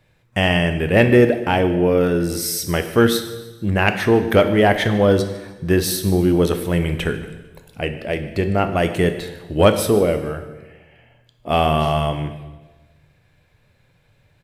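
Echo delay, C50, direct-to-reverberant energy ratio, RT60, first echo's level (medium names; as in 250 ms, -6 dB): 151 ms, 10.0 dB, 8.0 dB, 1.2 s, -20.0 dB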